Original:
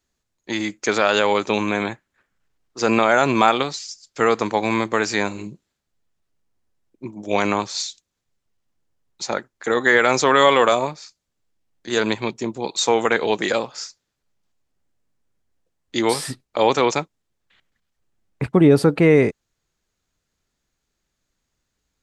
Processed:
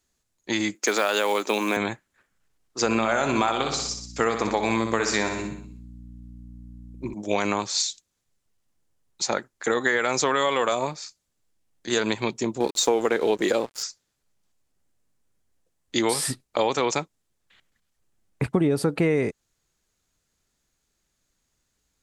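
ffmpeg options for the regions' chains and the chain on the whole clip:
ffmpeg -i in.wav -filter_complex "[0:a]asettb=1/sr,asplit=3[link_01][link_02][link_03];[link_01]atrim=end=0.754[link_04];[link_02]atrim=start=0.75:end=1.77,asetpts=PTS-STARTPTS,afade=type=in:duration=0.004:curve=qsin,afade=type=out:start_time=1.016:duration=0.004:curve=qsin,highpass=frequency=230:width=0.5412,highpass=frequency=230:width=1.3066,acrusher=bits=6:mode=log:mix=0:aa=0.000001[link_05];[link_03]atrim=start=1.766[link_06];[link_04][link_05]acrossfade=duration=0.004:curve1=hsin:curve2=qsin[link_07];[link_07][link_06]acrossfade=duration=0.004:curve1=qsin:curve2=hsin,asettb=1/sr,asplit=3[link_08][link_09][link_10];[link_08]atrim=end=2.844[link_11];[link_09]atrim=start=2.84:end=7.14,asetpts=PTS-STARTPTS,afade=type=in:duration=0.004:curve=qsin,afade=type=out:start_time=4.296:duration=0.004:curve=qsin,aeval=exprs='val(0)+0.01*(sin(2*PI*60*n/s)+sin(2*PI*2*60*n/s)/2+sin(2*PI*3*60*n/s)/3+sin(2*PI*4*60*n/s)/4+sin(2*PI*5*60*n/s)/5)':channel_layout=same,aecho=1:1:62|124|186|248|310|372:0.398|0.215|0.116|0.0627|0.0339|0.0183,atrim=end_sample=189630[link_12];[link_10]atrim=start=7.136[link_13];[link_11][link_12]acrossfade=duration=0.004:curve1=hsin:curve2=qsin[link_14];[link_14][link_13]acrossfade=duration=0.004:curve1=qsin:curve2=hsin,asettb=1/sr,asplit=3[link_15][link_16][link_17];[link_15]atrim=end=12.604[link_18];[link_16]atrim=start=12.6:end=13.83,asetpts=PTS-STARTPTS,afade=type=in:duration=0.004:curve=qsin,afade=type=out:start_time=1.226:duration=0.004:curve=qsin,equalizer=frequency=370:width=0.81:gain=9,aeval=exprs='sgn(val(0))*max(abs(val(0))-0.015,0)':channel_layout=same[link_19];[link_17]atrim=start=13.826[link_20];[link_18][link_19]acrossfade=duration=0.004:curve1=hsin:curve2=qsin[link_21];[link_21][link_20]acrossfade=duration=0.004:curve1=qsin:curve2=hsin,equalizer=frequency=10000:width=0.75:gain=7,acompressor=threshold=-19dB:ratio=5" out.wav

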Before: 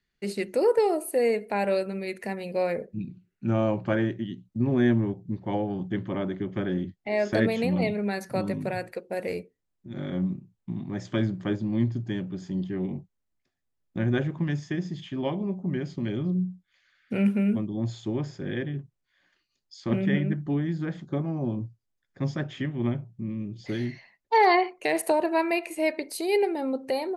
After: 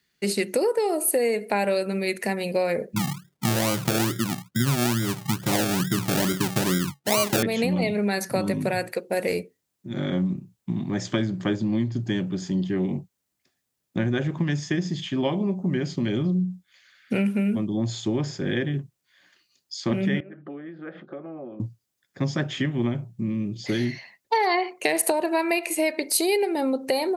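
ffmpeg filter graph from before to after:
ffmpeg -i in.wav -filter_complex "[0:a]asettb=1/sr,asplit=3[link_01][link_02][link_03];[link_01]atrim=end=2.964[link_04];[link_02]atrim=start=2.96:end=7.43,asetpts=PTS-STARTPTS,afade=type=in:duration=0.004:curve=qsin,afade=type=out:start_time=4.466:duration=0.004:curve=qsin,equalizer=frequency=140:width=4:gain=13.5,acrusher=samples=35:mix=1:aa=0.000001:lfo=1:lforange=21:lforate=2.3[link_05];[link_03]atrim=start=7.426[link_06];[link_04][link_05]acrossfade=duration=0.004:curve1=hsin:curve2=qsin[link_07];[link_07][link_06]acrossfade=duration=0.004:curve1=qsin:curve2=hsin,asettb=1/sr,asplit=3[link_08][link_09][link_10];[link_08]atrim=end=20.204[link_11];[link_09]atrim=start=20.2:end=21.6,asetpts=PTS-STARTPTS,afade=type=in:duration=0.004:curve=qsin,afade=type=out:start_time=1.396:duration=0.004:curve=qsin,acompressor=threshold=-36dB:ratio=16:attack=3.2:release=140:knee=1:detection=peak,highpass=350,equalizer=frequency=350:width_type=q:width=4:gain=3,equalizer=frequency=540:width_type=q:width=4:gain=6,equalizer=frequency=950:width_type=q:width=4:gain=-6,equalizer=frequency=1300:width_type=q:width=4:gain=5,equalizer=frequency=2100:width_type=q:width=4:gain=-3,lowpass=frequency=2500:width=0.5412,lowpass=frequency=2500:width=1.3066[link_12];[link_10]atrim=start=21.596[link_13];[link_11][link_12]acrossfade=duration=0.004:curve1=hsin:curve2=qsin[link_14];[link_14][link_13]acrossfade=duration=0.004:curve1=qsin:curve2=hsin,acompressor=threshold=-26dB:ratio=10,highpass=99,highshelf=frequency=3700:gain=9,volume=6.5dB" out.wav

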